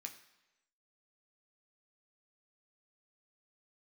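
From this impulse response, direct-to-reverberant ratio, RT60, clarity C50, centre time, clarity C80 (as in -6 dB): 3.0 dB, 1.0 s, 11.0 dB, 14 ms, 13.0 dB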